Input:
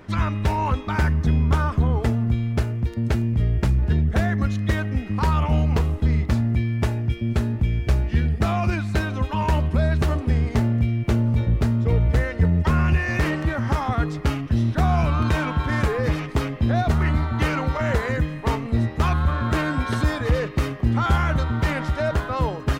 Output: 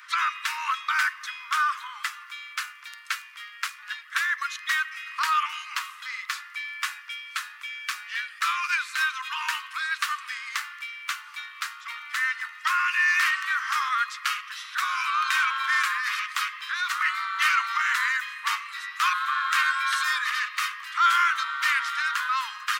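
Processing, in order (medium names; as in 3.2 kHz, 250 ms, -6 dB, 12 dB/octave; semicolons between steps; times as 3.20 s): 8.62–9.29 s: transient shaper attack -7 dB, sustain +3 dB; steep high-pass 1.1 kHz 72 dB/octave; trim +6.5 dB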